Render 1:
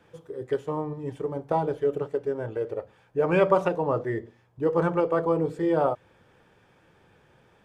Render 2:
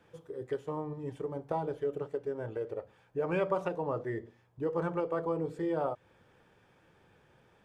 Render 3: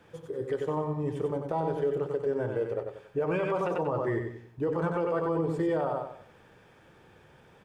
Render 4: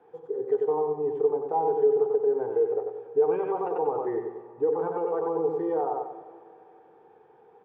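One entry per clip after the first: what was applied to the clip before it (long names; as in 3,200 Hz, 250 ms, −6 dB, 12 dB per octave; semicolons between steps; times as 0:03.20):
downward compressor 1.5 to 1, threshold −31 dBFS, peak gain reduction 6 dB; level −4.5 dB
on a send: repeating echo 93 ms, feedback 36%, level −5.5 dB; on the sum: brickwall limiter −26.5 dBFS, peak gain reduction 8.5 dB; level +6 dB
pair of resonant band-passes 590 Hz, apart 0.79 octaves; comb and all-pass reverb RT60 2.8 s, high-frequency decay 0.85×, pre-delay 115 ms, DRR 15.5 dB; level +9 dB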